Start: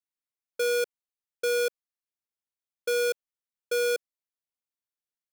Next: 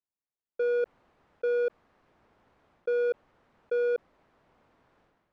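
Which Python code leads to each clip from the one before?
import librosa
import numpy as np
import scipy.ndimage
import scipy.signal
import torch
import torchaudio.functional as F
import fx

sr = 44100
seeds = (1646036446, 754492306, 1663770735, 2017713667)

y = scipy.signal.sosfilt(scipy.signal.butter(2, 1100.0, 'lowpass', fs=sr, output='sos'), x)
y = fx.sustainer(y, sr, db_per_s=38.0)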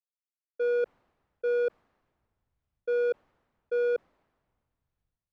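y = fx.band_widen(x, sr, depth_pct=70)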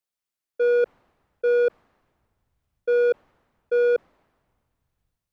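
y = fx.quant_float(x, sr, bits=8)
y = y * 10.0 ** (7.0 / 20.0)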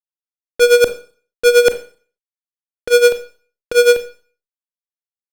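y = fx.fuzz(x, sr, gain_db=48.0, gate_db=-51.0)
y = y * (1.0 - 0.92 / 2.0 + 0.92 / 2.0 * np.cos(2.0 * np.pi * 9.5 * (np.arange(len(y)) / sr)))
y = fx.rev_schroeder(y, sr, rt60_s=0.42, comb_ms=29, drr_db=10.0)
y = y * 10.0 ** (6.0 / 20.0)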